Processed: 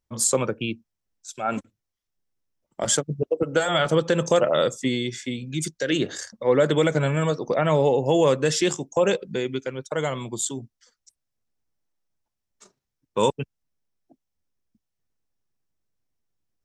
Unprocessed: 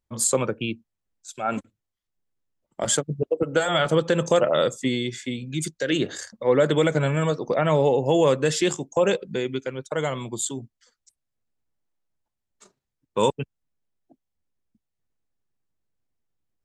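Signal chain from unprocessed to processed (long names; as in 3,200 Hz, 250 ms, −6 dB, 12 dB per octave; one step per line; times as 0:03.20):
parametric band 5,600 Hz +6 dB 0.27 octaves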